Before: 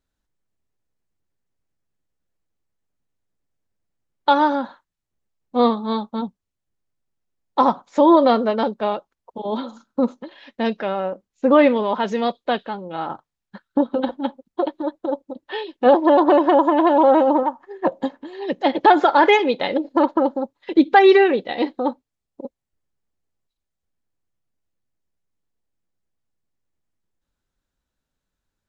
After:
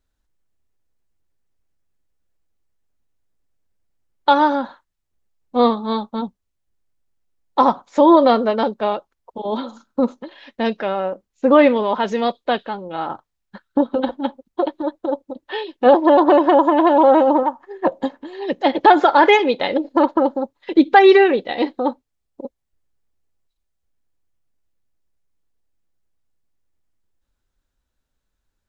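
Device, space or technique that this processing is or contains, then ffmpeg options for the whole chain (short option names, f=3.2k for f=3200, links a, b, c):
low shelf boost with a cut just above: -af "lowshelf=f=82:g=6.5,equalizer=f=160:t=o:w=1.1:g=-4,volume=2dB"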